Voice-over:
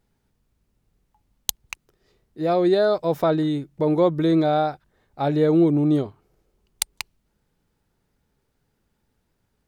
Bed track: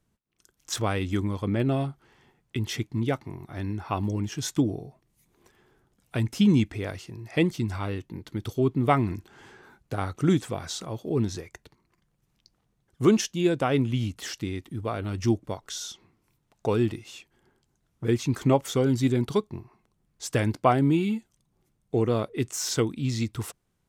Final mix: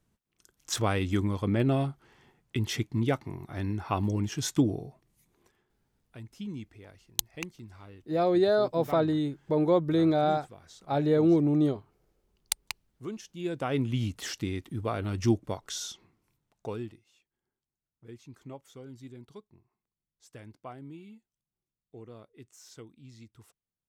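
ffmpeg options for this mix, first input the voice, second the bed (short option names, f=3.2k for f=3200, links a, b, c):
-filter_complex "[0:a]adelay=5700,volume=-5dB[a];[1:a]volume=17dB,afade=t=out:st=5.11:d=0.61:silence=0.125893,afade=t=in:st=13.24:d=0.9:silence=0.133352,afade=t=out:st=15.82:d=1.19:silence=0.0794328[b];[a][b]amix=inputs=2:normalize=0"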